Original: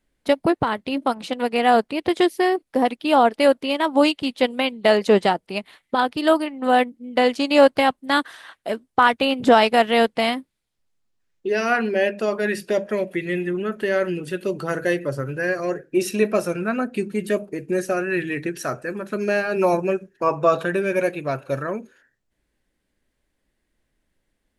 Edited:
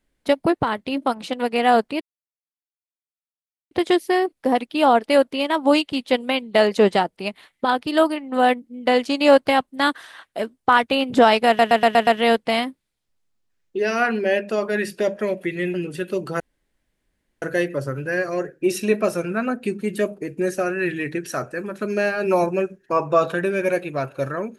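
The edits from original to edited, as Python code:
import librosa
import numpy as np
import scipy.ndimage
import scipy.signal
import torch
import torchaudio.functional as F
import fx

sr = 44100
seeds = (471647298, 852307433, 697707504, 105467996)

y = fx.edit(x, sr, fx.insert_silence(at_s=2.01, length_s=1.7),
    fx.stutter(start_s=9.77, slice_s=0.12, count=6),
    fx.cut(start_s=13.44, length_s=0.63),
    fx.insert_room_tone(at_s=14.73, length_s=1.02), tone=tone)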